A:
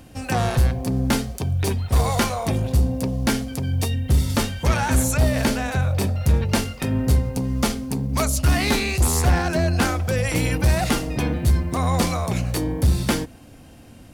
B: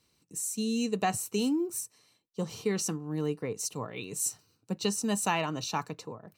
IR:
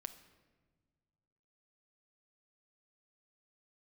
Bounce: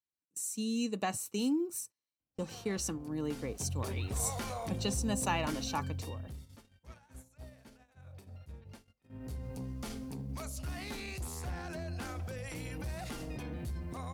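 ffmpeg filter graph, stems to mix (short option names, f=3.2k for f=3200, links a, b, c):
-filter_complex "[0:a]acompressor=threshold=-21dB:ratio=6,alimiter=limit=-21.5dB:level=0:latency=1:release=33,adelay=2200,volume=-2dB,afade=t=in:st=3.19:d=0.59:silence=0.251189,afade=t=out:st=5.68:d=0.73:silence=0.281838,afade=t=in:st=9.08:d=0.42:silence=0.375837,asplit=2[a][b];[b]volume=-10.5dB[c];[1:a]aecho=1:1:3.5:0.32,volume=-4.5dB[d];[2:a]atrim=start_sample=2205[e];[c][e]afir=irnorm=-1:irlink=0[f];[a][d][f]amix=inputs=3:normalize=0,agate=range=-28dB:threshold=-47dB:ratio=16:detection=peak"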